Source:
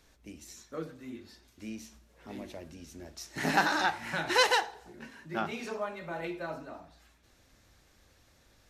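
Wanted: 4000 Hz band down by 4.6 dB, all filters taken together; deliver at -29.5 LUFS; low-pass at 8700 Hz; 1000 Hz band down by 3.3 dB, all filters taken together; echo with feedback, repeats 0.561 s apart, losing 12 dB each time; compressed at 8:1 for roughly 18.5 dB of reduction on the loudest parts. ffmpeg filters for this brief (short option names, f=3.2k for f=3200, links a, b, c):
-af "lowpass=8.7k,equalizer=f=1k:t=o:g=-4,equalizer=f=4k:t=o:g=-5.5,acompressor=threshold=-42dB:ratio=8,aecho=1:1:561|1122|1683:0.251|0.0628|0.0157,volume=18dB"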